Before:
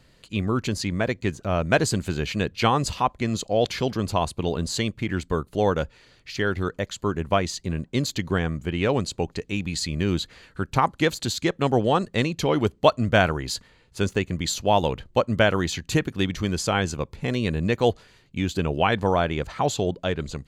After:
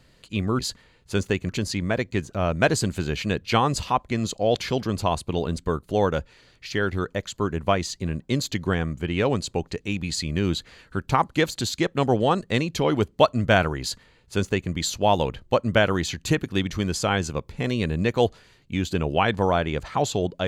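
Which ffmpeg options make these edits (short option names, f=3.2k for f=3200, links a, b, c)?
-filter_complex "[0:a]asplit=4[a][b][c][d];[a]atrim=end=0.592[e];[b]atrim=start=13.448:end=14.352[f];[c]atrim=start=0.588:end=4.682[g];[d]atrim=start=5.218[h];[e][f]acrossfade=d=0.004:c1=hsin:c2=hsin[i];[i][g]acrossfade=d=0.004:c1=hsin:c2=hsin[j];[j][h]acrossfade=d=0.004:c1=hsin:c2=hsin"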